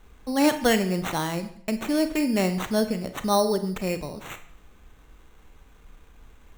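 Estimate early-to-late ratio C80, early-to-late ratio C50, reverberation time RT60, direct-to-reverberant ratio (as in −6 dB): 15.0 dB, 11.5 dB, 0.60 s, 9.5 dB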